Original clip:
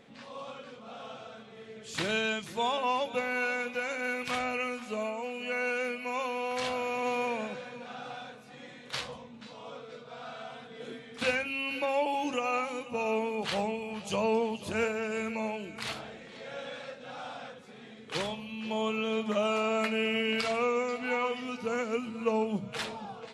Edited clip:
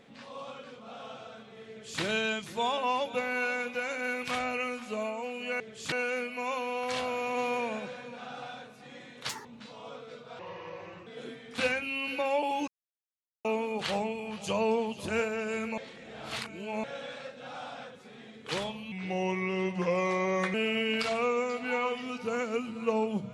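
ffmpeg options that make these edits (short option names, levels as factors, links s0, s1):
-filter_complex "[0:a]asplit=13[s0][s1][s2][s3][s4][s5][s6][s7][s8][s9][s10][s11][s12];[s0]atrim=end=5.602[s13];[s1]atrim=start=1.688:end=2.012[s14];[s2]atrim=start=5.598:end=8.974[s15];[s3]atrim=start=8.97:end=9.26,asetpts=PTS-STARTPTS,asetrate=79380,aresample=44100[s16];[s4]atrim=start=9.256:end=10.204[s17];[s5]atrim=start=10.2:end=10.7,asetpts=PTS-STARTPTS,asetrate=32634,aresample=44100,atrim=end_sample=29797,asetpts=PTS-STARTPTS[s18];[s6]atrim=start=10.696:end=12.31,asetpts=PTS-STARTPTS,afade=t=out:st=1.61:d=0.004:c=hsin[s19];[s7]atrim=start=12.31:end=13.08,asetpts=PTS-STARTPTS,volume=0[s20];[s8]atrim=start=13.08:end=15.412,asetpts=PTS-STARTPTS,afade=t=in:d=0.004:c=hsin[s21];[s9]atrim=start=15.408:end=16.472,asetpts=PTS-STARTPTS,areverse[s22];[s10]atrim=start=16.468:end=18.554[s23];[s11]atrim=start=18.55:end=19.93,asetpts=PTS-STARTPTS,asetrate=37485,aresample=44100[s24];[s12]atrim=start=19.926[s25];[s13][s14]acrossfade=d=0.004:c1=hsin:c2=hsin[s26];[s26][s15]acrossfade=d=0.004:c1=hsin:c2=hsin[s27];[s27][s16]acrossfade=d=0.004:c1=hsin:c2=hsin[s28];[s28][s17]acrossfade=d=0.004:c1=hsin:c2=hsin[s29];[s29][s18]acrossfade=d=0.004:c1=hsin:c2=hsin[s30];[s19][s20][s21]concat=n=3:v=0:a=1[s31];[s30][s31]acrossfade=d=0.004:c1=hsin:c2=hsin[s32];[s32][s22]acrossfade=d=0.004:c1=hsin:c2=hsin[s33];[s33][s23]acrossfade=d=0.004:c1=hsin:c2=hsin[s34];[s34][s24]acrossfade=d=0.004:c1=hsin:c2=hsin[s35];[s35][s25]acrossfade=d=0.004:c1=hsin:c2=hsin"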